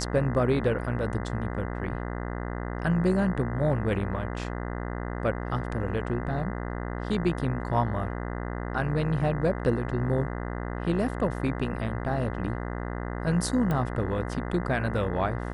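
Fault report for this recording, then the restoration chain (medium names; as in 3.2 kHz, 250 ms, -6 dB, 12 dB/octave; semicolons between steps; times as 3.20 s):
buzz 60 Hz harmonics 34 -33 dBFS
13.71 s: pop -17 dBFS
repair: de-click; de-hum 60 Hz, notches 34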